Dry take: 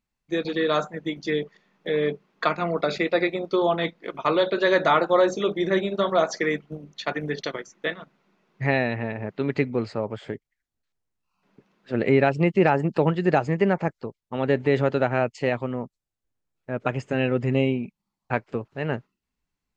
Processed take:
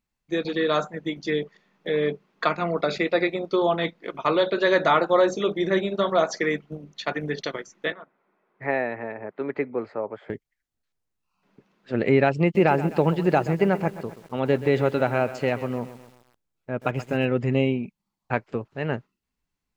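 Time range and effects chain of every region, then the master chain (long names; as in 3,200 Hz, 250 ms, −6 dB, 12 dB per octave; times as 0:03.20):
0:07.92–0:10.30: three-way crossover with the lows and the highs turned down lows −16 dB, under 290 Hz, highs −22 dB, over 2,300 Hz + notch filter 2,800 Hz, Q 14
0:12.42–0:17.25: notch filter 1,800 Hz, Q 15 + feedback echo at a low word length 129 ms, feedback 55%, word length 7 bits, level −14 dB
whole clip: no processing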